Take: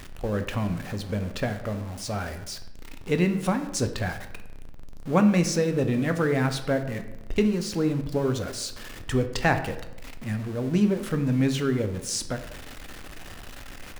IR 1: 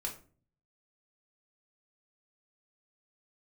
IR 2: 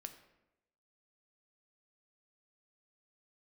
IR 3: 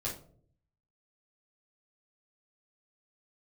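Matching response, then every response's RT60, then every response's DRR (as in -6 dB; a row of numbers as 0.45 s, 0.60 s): 2; 0.40 s, 0.95 s, no single decay rate; -1.0 dB, 7.0 dB, -7.5 dB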